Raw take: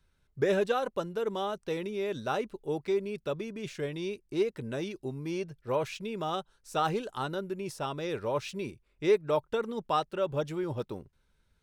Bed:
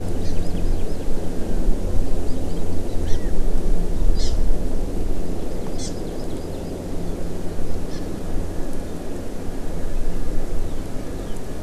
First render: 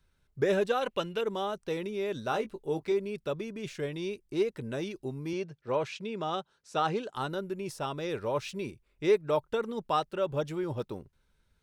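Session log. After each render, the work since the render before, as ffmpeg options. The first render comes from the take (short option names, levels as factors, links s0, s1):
-filter_complex "[0:a]asettb=1/sr,asplit=3[s0][s1][s2];[s0]atrim=end=0.814[s3];[s1]atrim=start=0.81:end=1.21,asetpts=PTS-STARTPTS,afade=t=in:d=0.004:c=qsin,afade=t=out:st=0.396:d=0.004:c=qsin,equalizer=f=2700:w=1.3:g=13.5[s4];[s2]atrim=start=1.206[s5];[s3][s4]acrossfade=d=0.004:c1=hsin:c2=qsin[s6];[s6][s5]acrossfade=d=0.004:c1=qsin:c2=hsin,asettb=1/sr,asplit=3[s7][s8][s9];[s7]atrim=end=2.294[s10];[s8]atrim=start=2.29:end=2.92,asetpts=PTS-STARTPTS,afade=t=in:d=0.004:c=qsin,afade=t=out:st=0.626:d=0.004:c=qsin,asplit=2[s11][s12];[s12]adelay=18,volume=0.355[s13];[s11][s13]amix=inputs=2:normalize=0,atrim=end_sample=27783[s14];[s9]atrim=start=2.916[s15];[s10][s14]acrossfade=d=0.004:c1=hsin:c2=qsin[s16];[s16][s15]acrossfade=d=0.004:c1=qsin:c2=hsin,asettb=1/sr,asplit=3[s17][s18][s19];[s17]atrim=end=5.334[s20];[s18]atrim=start=5.33:end=7.15,asetpts=PTS-STARTPTS,afade=t=in:d=0.004:c=qsin,afade=t=out:st=1.816:d=0.004:c=qsin,highpass=120,lowpass=6500[s21];[s19]atrim=start=7.146[s22];[s20][s21]acrossfade=d=0.004:c1=hsin:c2=qsin[s23];[s23][s22]acrossfade=d=0.004:c1=qsin:c2=hsin"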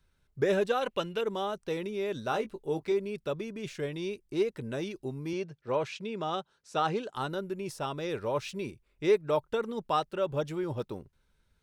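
-af anull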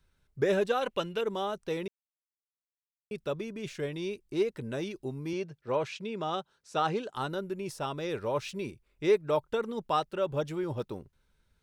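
-filter_complex "[0:a]asplit=3[s0][s1][s2];[s0]atrim=end=1.88,asetpts=PTS-STARTPTS,afade=t=out:st=1.876:d=0.004:c=hsin[s3];[s1]atrim=start=1.88:end=3.11,asetpts=PTS-STARTPTS,volume=0[s4];[s2]atrim=start=3.11,asetpts=PTS-STARTPTS,afade=t=in:d=0.004:c=hsin[s5];[s3][s4][s5]concat=n=3:v=0:a=1"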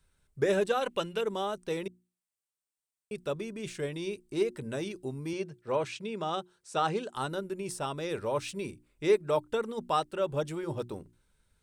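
-af "equalizer=f=8600:t=o:w=0.43:g=10.5,bandreject=f=60:t=h:w=6,bandreject=f=120:t=h:w=6,bandreject=f=180:t=h:w=6,bandreject=f=240:t=h:w=6,bandreject=f=300:t=h:w=6,bandreject=f=360:t=h:w=6"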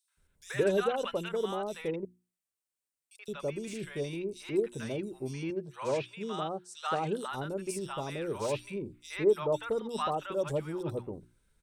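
-filter_complex "[0:a]acrossover=split=930|3800[s0][s1][s2];[s1]adelay=80[s3];[s0]adelay=170[s4];[s4][s3][s2]amix=inputs=3:normalize=0"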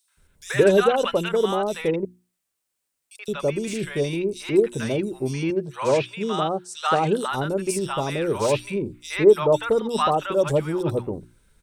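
-af "volume=3.55"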